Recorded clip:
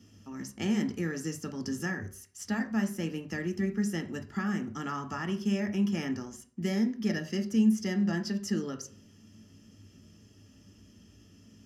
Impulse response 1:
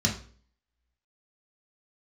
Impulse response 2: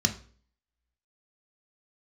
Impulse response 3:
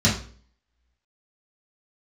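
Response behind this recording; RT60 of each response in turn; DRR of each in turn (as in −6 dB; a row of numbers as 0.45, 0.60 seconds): 2; 0.45, 0.45, 0.45 seconds; −1.5, 5.0, −7.5 decibels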